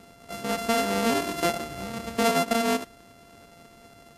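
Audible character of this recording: a buzz of ramps at a fixed pitch in blocks of 64 samples; Vorbis

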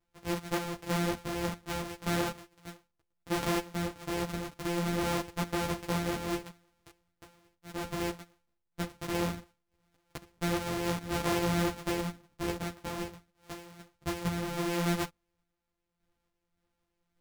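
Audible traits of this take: a buzz of ramps at a fixed pitch in blocks of 256 samples; random-step tremolo; a shimmering, thickened sound

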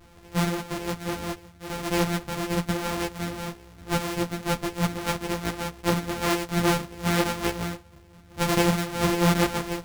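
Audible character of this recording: a buzz of ramps at a fixed pitch in blocks of 256 samples; tremolo triangle 1.1 Hz, depth 40%; a shimmering, thickened sound

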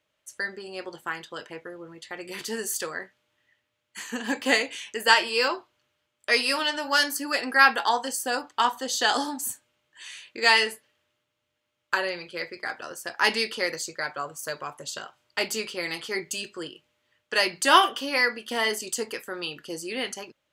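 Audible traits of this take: noise floor -79 dBFS; spectral tilt -0.5 dB/oct

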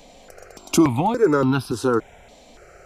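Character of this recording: notches that jump at a steady rate 3.5 Hz 370–2000 Hz

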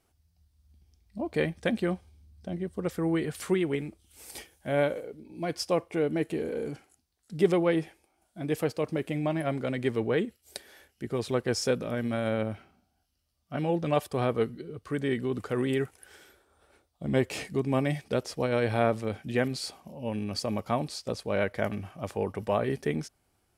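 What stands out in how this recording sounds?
noise floor -74 dBFS; spectral tilt -5.5 dB/oct

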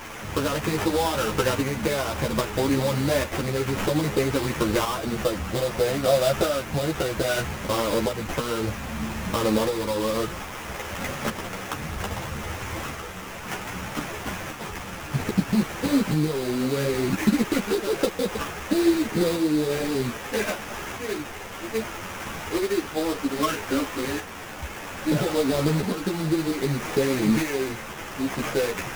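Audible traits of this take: a quantiser's noise floor 6-bit, dither triangular; tremolo saw up 0.62 Hz, depth 40%; aliases and images of a low sample rate 4300 Hz, jitter 20%; a shimmering, thickened sound

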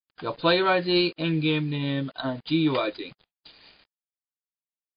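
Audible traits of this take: a quantiser's noise floor 8-bit, dither none; MP3

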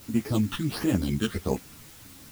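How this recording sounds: aliases and images of a low sample rate 7200 Hz, jitter 0%; phasing stages 8, 1.4 Hz, lowest notch 640–4400 Hz; a quantiser's noise floor 8-bit, dither triangular; a shimmering, thickened sound

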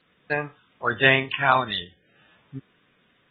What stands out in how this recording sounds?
AAC

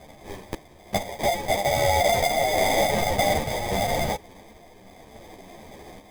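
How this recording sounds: a quantiser's noise floor 8-bit, dither triangular; random-step tremolo; aliases and images of a low sample rate 1400 Hz, jitter 0%; a shimmering, thickened sound

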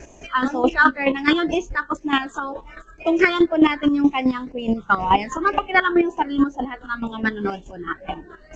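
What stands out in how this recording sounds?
chopped level 4.7 Hz, depth 65%, duty 25%; phasing stages 8, 2 Hz, lowest notch 700–1500 Hz; G.722

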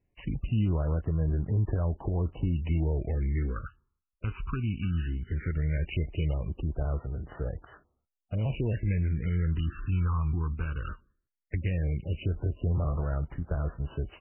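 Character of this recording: a buzz of ramps at a fixed pitch in blocks of 8 samples; phasing stages 12, 0.17 Hz, lowest notch 590–2400 Hz; MP3

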